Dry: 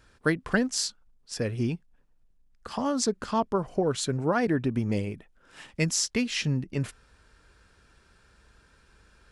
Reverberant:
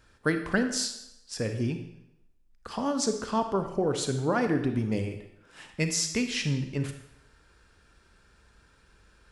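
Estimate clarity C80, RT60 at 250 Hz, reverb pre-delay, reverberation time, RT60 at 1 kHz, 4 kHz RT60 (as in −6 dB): 11.0 dB, 0.80 s, 32 ms, 0.85 s, 0.85 s, 0.75 s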